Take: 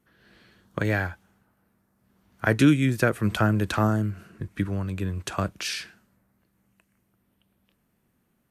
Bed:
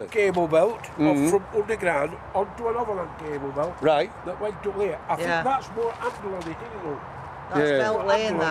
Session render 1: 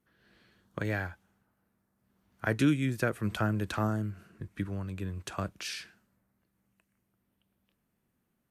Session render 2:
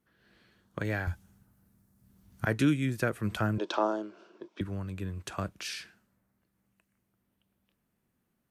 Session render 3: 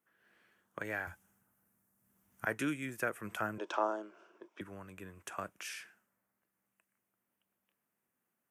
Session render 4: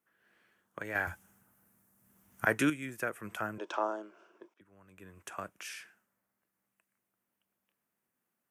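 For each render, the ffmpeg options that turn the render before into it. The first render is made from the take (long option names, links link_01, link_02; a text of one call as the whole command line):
ffmpeg -i in.wav -af "volume=-7.5dB" out.wav
ffmpeg -i in.wav -filter_complex "[0:a]asettb=1/sr,asplit=3[link_01][link_02][link_03];[link_01]atrim=end=1.074[link_04];[link_02]atrim=start=1.07:end=2.45,asetpts=PTS-STARTPTS,afade=type=in:duration=0.004:curve=qsin,afade=type=out:start_time=1.376:duration=0.004:curve=qsin,bass=frequency=250:gain=14,treble=frequency=4000:gain=11[link_05];[link_03]atrim=start=2.446[link_06];[link_04][link_05]acrossfade=duration=0.004:curve1=hsin:curve2=qsin[link_07];[link_07][link_06]acrossfade=duration=0.004:curve1=qsin:curve2=hsin,asettb=1/sr,asplit=3[link_08][link_09][link_10];[link_08]atrim=end=3.584[link_11];[link_09]atrim=start=3.58:end=4.61,asetpts=PTS-STARTPTS,afade=type=in:duration=0.004:curve=qsin,afade=type=out:start_time=1.026:duration=0.004:curve=qsin,highpass=frequency=290:width=0.5412,highpass=frequency=290:width=1.3066,equalizer=frequency=360:width_type=q:width=4:gain=9,equalizer=frequency=590:width_type=q:width=4:gain=10,equalizer=frequency=940:width_type=q:width=4:gain=10,equalizer=frequency=1900:width_type=q:width=4:gain=-9,equalizer=frequency=3400:width_type=q:width=4:gain=8,equalizer=frequency=5400:width_type=q:width=4:gain=6,lowpass=frequency=6100:width=0.5412,lowpass=frequency=6100:width=1.3066[link_12];[link_10]atrim=start=4.606[link_13];[link_11][link_12]acrossfade=duration=0.004:curve1=hsin:curve2=qsin[link_14];[link_14][link_13]acrossfade=duration=0.004:curve1=qsin:curve2=hsin" out.wav
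ffmpeg -i in.wav -af "highpass=frequency=880:poles=1,equalizer=frequency=4200:width=1.8:gain=-15" out.wav
ffmpeg -i in.wav -filter_complex "[0:a]asettb=1/sr,asplit=3[link_01][link_02][link_03];[link_01]atrim=end=0.954[link_04];[link_02]atrim=start=0.95:end=2.7,asetpts=PTS-STARTPTS,afade=type=in:duration=0.004:curve=qsin,afade=type=out:start_time=1.746:duration=0.004:curve=qsin,acontrast=79[link_05];[link_03]atrim=start=2.696[link_06];[link_04][link_05]acrossfade=duration=0.004:curve1=hsin:curve2=qsin[link_07];[link_07][link_06]acrossfade=duration=0.004:curve1=qsin:curve2=hsin,asplit=2[link_08][link_09];[link_08]atrim=end=4.54,asetpts=PTS-STARTPTS,afade=type=out:start_time=4.536:duration=0.004:curve=hsin:silence=0.112202[link_10];[link_09]atrim=start=4.54,asetpts=PTS-STARTPTS,afade=type=in:duration=0.64:curve=qua:silence=0.112202[link_11];[link_10][link_11]concat=n=2:v=0:a=1" out.wav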